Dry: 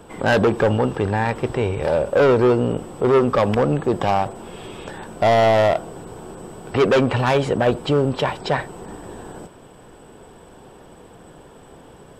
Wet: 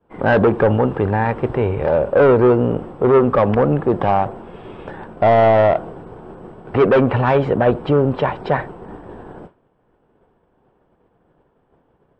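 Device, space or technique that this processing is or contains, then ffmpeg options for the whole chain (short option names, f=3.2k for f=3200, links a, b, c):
hearing-loss simulation: -af "lowpass=1.9k,agate=range=-33dB:threshold=-32dB:ratio=3:detection=peak,volume=3dB"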